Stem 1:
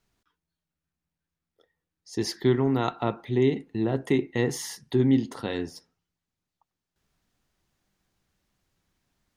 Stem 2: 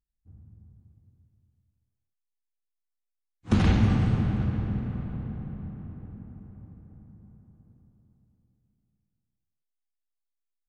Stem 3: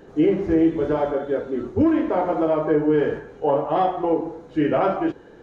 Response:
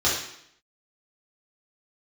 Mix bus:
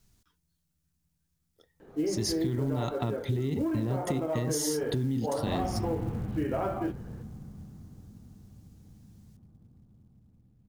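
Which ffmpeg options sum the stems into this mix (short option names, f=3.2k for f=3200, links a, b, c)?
-filter_complex "[0:a]bass=f=250:g=13,treble=f=4k:g=12,alimiter=limit=-14.5dB:level=0:latency=1:release=67,volume=-1dB[a];[1:a]lowpass=f=1.7k:p=1,acompressor=mode=upward:threshold=-38dB:ratio=2.5,adelay=1950,volume=-8dB[b];[2:a]lowpass=f=3.1k:p=1,adelay=1800,volume=-7.5dB[c];[a][b][c]amix=inputs=3:normalize=0,acrusher=bits=8:mode=log:mix=0:aa=0.000001,acompressor=threshold=-26dB:ratio=6"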